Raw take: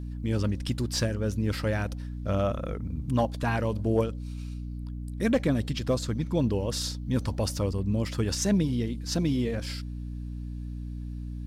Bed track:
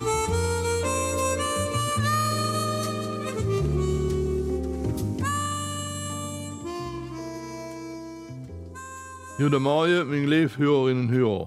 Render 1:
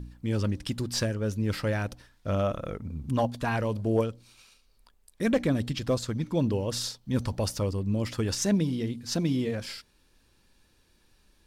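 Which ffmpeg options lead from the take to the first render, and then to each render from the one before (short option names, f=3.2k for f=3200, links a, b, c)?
-af "bandreject=f=60:t=h:w=4,bandreject=f=120:t=h:w=4,bandreject=f=180:t=h:w=4,bandreject=f=240:t=h:w=4,bandreject=f=300:t=h:w=4"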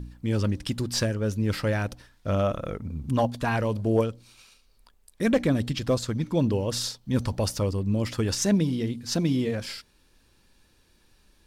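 -af "volume=2.5dB"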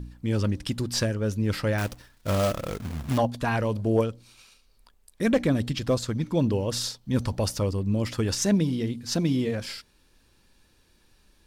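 -filter_complex "[0:a]asettb=1/sr,asplit=3[a][b][c];[a]atrim=end=1.784[d];[b]atrim=start=1.78:end=3.18,asetpts=PTS-STARTPTS,afade=t=in:d=0.004:c=qsin,afade=t=out:st=1.396:d=0.004:c=qsin,acrusher=bits=2:mode=log:mix=0:aa=0.000001[e];[c]atrim=start=3.176[f];[d][e]acrossfade=d=0.004:c1=hsin:c2=qsin[g];[g][f]acrossfade=d=0.004:c1=qsin:c2=hsin"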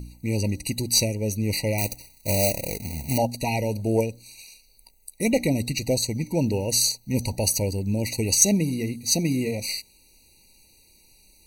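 -af "crystalizer=i=5:c=0,afftfilt=real='re*eq(mod(floor(b*sr/1024/960),2),0)':imag='im*eq(mod(floor(b*sr/1024/960),2),0)':win_size=1024:overlap=0.75"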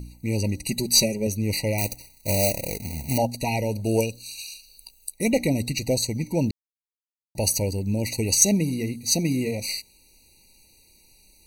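-filter_complex "[0:a]asettb=1/sr,asplit=3[a][b][c];[a]atrim=end=0.684[d];[b]atrim=start=0.68:end=1.27,asetpts=PTS-STARTPTS,afade=t=in:d=0.004:c=qsin,afade=t=out:st=0.586:d=0.004:c=qsin,aecho=1:1:5.1:0.77,atrim=end_sample=26019[e];[c]atrim=start=1.266[f];[d][e]acrossfade=d=0.004:c1=hsin:c2=qsin[g];[g][f]acrossfade=d=0.004:c1=qsin:c2=hsin,asettb=1/sr,asplit=3[h][i][j];[h]atrim=end=3.854[k];[i]atrim=start=3.85:end=5.12,asetpts=PTS-STARTPTS,afade=t=in:d=0.004:c=qsin,afade=t=out:st=1.266:d=0.004:c=qsin,highshelf=f=2.4k:t=q:w=3:g=7[l];[j]atrim=start=5.116[m];[k][l]acrossfade=d=0.004:c1=hsin:c2=qsin[n];[n][m]acrossfade=d=0.004:c1=qsin:c2=hsin,asplit=3[o][p][q];[o]atrim=end=6.51,asetpts=PTS-STARTPTS,afade=t=out:st=6.506:d=0.004:c=hsin[r];[p]atrim=start=6.51:end=7.35,asetpts=PTS-STARTPTS,volume=0[s];[q]atrim=start=7.35,asetpts=PTS-STARTPTS,afade=t=in:d=0.004:c=hsin[t];[r][s][t]concat=n=3:v=0:a=1"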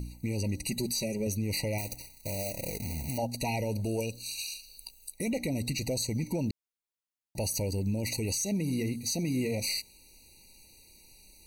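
-af "acompressor=threshold=-25dB:ratio=6,alimiter=limit=-22.5dB:level=0:latency=1:release=11"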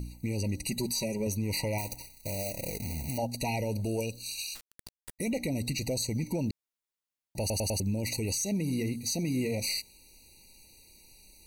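-filter_complex "[0:a]asettb=1/sr,asplit=3[a][b][c];[a]atrim=end=0.814[d];[b]atrim=start=0.81:end=2.03,asetpts=PTS-STARTPTS,afade=t=in:d=0.004:c=qsin,afade=t=out:st=1.216:d=0.004:c=qsin,equalizer=f=1k:t=o:w=0.36:g=12.5[e];[c]atrim=start=2.026[f];[d][e]acrossfade=d=0.004:c1=hsin:c2=qsin[g];[g][f]acrossfade=d=0.004:c1=qsin:c2=hsin,asettb=1/sr,asplit=3[h][i][j];[h]atrim=end=4.554[k];[i]atrim=start=4.55:end=5.19,asetpts=PTS-STARTPTS,afade=t=in:d=0.004:c=qsin,afade=t=out:st=0.636:d=0.004:c=qsin,acrusher=bits=4:dc=4:mix=0:aa=0.000001[l];[j]atrim=start=5.186[m];[k][l]acrossfade=d=0.004:c1=hsin:c2=qsin[n];[n][m]acrossfade=d=0.004:c1=qsin:c2=hsin,asplit=5[o][p][q][r][s];[o]atrim=end=7.502[t];[p]atrim=start=7.398:end=7.502[u];[q]atrim=start=7.398:end=7.502[v];[r]atrim=start=7.398:end=7.502[w];[s]atrim=start=7.798[x];[t][u]acrossfade=d=0.004:c1=hsin:c2=hsin[y];[y][v]acrossfade=d=0.004:c1=hsin:c2=hsin[z];[z][w]acrossfade=d=0.004:c1=hsin:c2=hsin[aa];[aa][x]acrossfade=d=0.004:c1=hsin:c2=hsin"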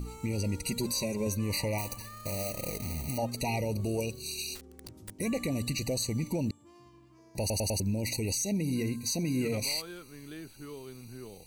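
-filter_complex "[1:a]volume=-23.5dB[a];[0:a][a]amix=inputs=2:normalize=0"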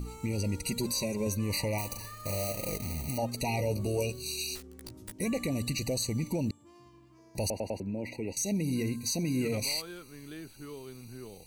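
-filter_complex "[0:a]asettb=1/sr,asplit=3[a][b][c];[a]atrim=end=1.884[d];[b]atrim=start=1.88:end=2.77,asetpts=PTS-STARTPTS,afade=t=in:d=0.004:c=qsin,afade=t=out:st=0.886:d=0.004:c=qsin,asplit=2[e][f];[f]adelay=39,volume=-5.5dB[g];[e][g]amix=inputs=2:normalize=0,atrim=end_sample=39249[h];[c]atrim=start=2.766[i];[d][h]acrossfade=d=0.004:c1=hsin:c2=qsin[j];[j][i]acrossfade=d=0.004:c1=qsin:c2=hsin,asettb=1/sr,asplit=3[k][l][m];[k]atrim=end=3.574[n];[l]atrim=start=3.57:end=5.24,asetpts=PTS-STARTPTS,afade=t=in:d=0.004:c=qsin,afade=t=out:st=1.666:d=0.004:c=qsin,asplit=2[o][p];[p]adelay=16,volume=-4.5dB[q];[o][q]amix=inputs=2:normalize=0,atrim=end_sample=73647[r];[m]atrim=start=5.236[s];[n][r]acrossfade=d=0.004:c1=hsin:c2=qsin[t];[t][s]acrossfade=d=0.004:c1=qsin:c2=hsin,asettb=1/sr,asplit=3[u][v][w];[u]atrim=end=7.504[x];[v]atrim=start=7.5:end=8.37,asetpts=PTS-STARTPTS,afade=t=in:d=0.004:c=qsin,afade=t=out:st=0.866:d=0.004:c=qsin,acrossover=split=190 2500:gain=0.251 1 0.0708[y][z][aa];[y][z][aa]amix=inputs=3:normalize=0[ab];[w]atrim=start=8.366[ac];[x][ab]acrossfade=d=0.004:c1=hsin:c2=qsin[ad];[ad][ac]acrossfade=d=0.004:c1=qsin:c2=hsin"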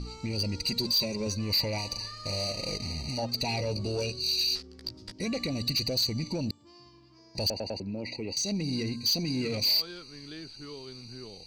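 -af "lowpass=f=4.8k:t=q:w=7.5,asoftclip=type=tanh:threshold=-21.5dB"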